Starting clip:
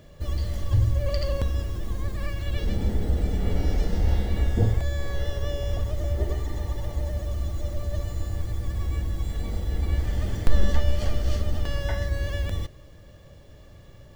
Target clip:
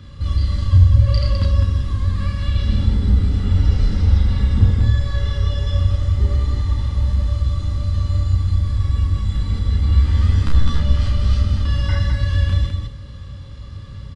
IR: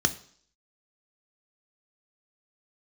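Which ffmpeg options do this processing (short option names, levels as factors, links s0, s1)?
-filter_complex "[0:a]bandreject=f=660:w=12,asplit=2[s0][s1];[s1]acompressor=threshold=0.0224:ratio=6,volume=1.41[s2];[s0][s2]amix=inputs=2:normalize=0,asoftclip=type=hard:threshold=0.266,asettb=1/sr,asplit=3[s3][s4][s5];[s3]atrim=end=9.864[s6];[s4]atrim=start=9.86:end=10.8,asetpts=PTS-STARTPTS,afade=t=in:d=0.004:c=qsin,afade=t=out:st=0.936:d=0.004:c=qsin,asplit=2[s7][s8];[s8]adelay=13,volume=0.708[s9];[s7][s9]amix=inputs=2:normalize=0,atrim=end_sample=41454[s10];[s5]atrim=start=10.796[s11];[s6][s10]acrossfade=d=0.004:c1=hsin:c2=qsin[s12];[s12][s11]acrossfade=d=0.004:c1=qsin:c2=hsin,aecho=1:1:32.07|207:0.708|0.631,asplit=2[s13][s14];[1:a]atrim=start_sample=2205,asetrate=32193,aresample=44100[s15];[s14][s15]afir=irnorm=-1:irlink=0,volume=0.422[s16];[s13][s16]amix=inputs=2:normalize=0,aresample=22050,aresample=44100,volume=0.473"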